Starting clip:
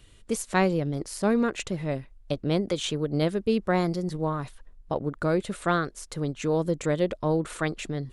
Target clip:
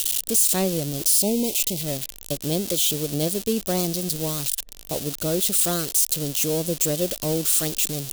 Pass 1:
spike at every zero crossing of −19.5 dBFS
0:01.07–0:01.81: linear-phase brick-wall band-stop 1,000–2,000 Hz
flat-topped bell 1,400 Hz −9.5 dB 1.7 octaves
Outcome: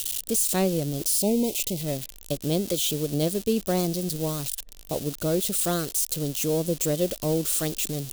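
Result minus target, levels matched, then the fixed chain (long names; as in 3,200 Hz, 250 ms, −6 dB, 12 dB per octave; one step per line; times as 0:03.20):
spike at every zero crossing: distortion −6 dB
spike at every zero crossing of −13.5 dBFS
0:01.07–0:01.81: linear-phase brick-wall band-stop 1,000–2,000 Hz
flat-topped bell 1,400 Hz −9.5 dB 1.7 octaves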